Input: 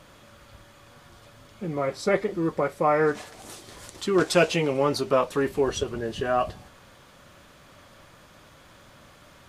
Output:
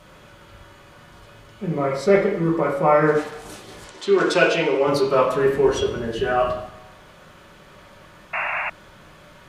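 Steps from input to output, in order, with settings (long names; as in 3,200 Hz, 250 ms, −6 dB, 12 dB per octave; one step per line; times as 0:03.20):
0:03.84–0:04.87: band-pass filter 300–7,600 Hz
convolution reverb, pre-delay 3 ms, DRR −3.5 dB
0:08.33–0:08.70: sound drawn into the spectrogram noise 580–2,800 Hz −25 dBFS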